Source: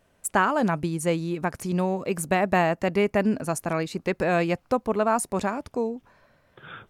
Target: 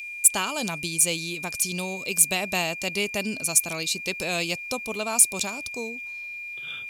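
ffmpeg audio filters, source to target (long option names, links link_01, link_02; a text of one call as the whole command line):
ffmpeg -i in.wav -af "aeval=exprs='val(0)+0.0126*sin(2*PI*2400*n/s)':channel_layout=same,aexciter=amount=5.9:drive=9.6:freq=2600,volume=-8dB" out.wav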